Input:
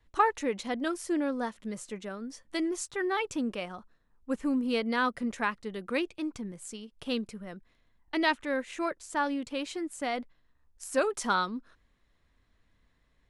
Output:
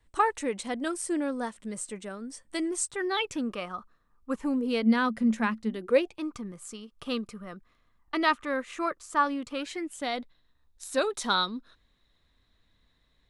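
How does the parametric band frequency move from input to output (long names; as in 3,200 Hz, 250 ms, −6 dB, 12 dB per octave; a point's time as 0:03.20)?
parametric band +14.5 dB 0.23 octaves
0:02.95 8,400 Hz
0:03.46 1,200 Hz
0:04.34 1,200 Hz
0:04.87 220 Hz
0:05.69 220 Hz
0:06.23 1,200 Hz
0:09.53 1,200 Hz
0:10.03 3,800 Hz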